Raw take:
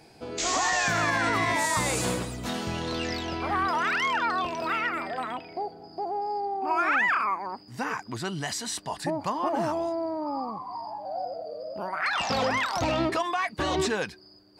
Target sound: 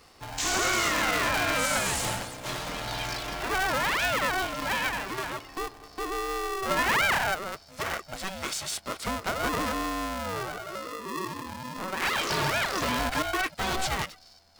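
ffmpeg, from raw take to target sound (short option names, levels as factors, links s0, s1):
-af "lowshelf=f=210:g=-11.5,aeval=exprs='val(0)*sgn(sin(2*PI*380*n/s))':c=same"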